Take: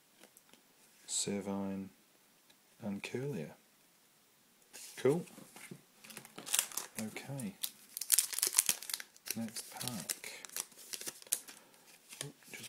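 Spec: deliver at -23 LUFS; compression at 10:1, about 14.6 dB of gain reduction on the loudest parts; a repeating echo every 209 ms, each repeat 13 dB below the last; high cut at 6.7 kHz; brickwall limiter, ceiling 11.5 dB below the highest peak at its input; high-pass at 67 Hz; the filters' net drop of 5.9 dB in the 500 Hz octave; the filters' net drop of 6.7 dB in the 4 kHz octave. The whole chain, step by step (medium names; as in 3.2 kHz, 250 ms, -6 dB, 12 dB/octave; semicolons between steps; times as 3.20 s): high-pass 67 Hz; low-pass 6.7 kHz; peaking EQ 500 Hz -8 dB; peaking EQ 4 kHz -8 dB; compression 10:1, threshold -45 dBFS; peak limiter -36 dBFS; feedback delay 209 ms, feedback 22%, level -13 dB; trim +30 dB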